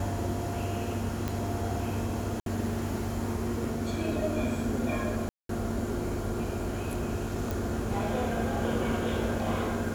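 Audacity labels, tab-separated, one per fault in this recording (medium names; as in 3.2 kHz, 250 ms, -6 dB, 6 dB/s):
1.280000	1.280000	pop
2.400000	2.460000	dropout 62 ms
5.290000	5.490000	dropout 203 ms
7.510000	7.510000	pop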